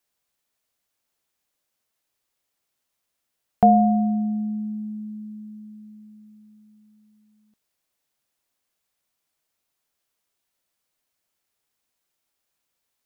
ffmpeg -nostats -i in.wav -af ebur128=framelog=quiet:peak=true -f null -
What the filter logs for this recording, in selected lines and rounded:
Integrated loudness:
  I:         -21.8 LUFS
  Threshold: -35.7 LUFS
Loudness range:
  LRA:        17.8 LU
  Threshold: -47.6 LUFS
  LRA low:   -42.0 LUFS
  LRA high:  -24.2 LUFS
True peak:
  Peak:       -4.2 dBFS